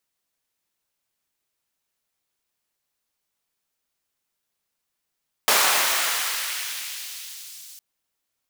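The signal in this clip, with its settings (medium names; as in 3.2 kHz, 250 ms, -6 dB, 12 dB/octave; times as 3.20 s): swept filtered noise pink, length 2.31 s highpass, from 680 Hz, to 5.7 kHz, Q 0.84, exponential, gain ramp -23 dB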